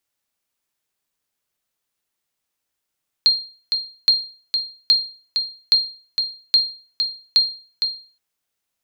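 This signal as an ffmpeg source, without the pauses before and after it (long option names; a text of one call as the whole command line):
ffmpeg -f lavfi -i "aevalsrc='0.447*(sin(2*PI*4210*mod(t,0.82))*exp(-6.91*mod(t,0.82)/0.4)+0.473*sin(2*PI*4210*max(mod(t,0.82)-0.46,0))*exp(-6.91*max(mod(t,0.82)-0.46,0)/0.4))':duration=4.92:sample_rate=44100" out.wav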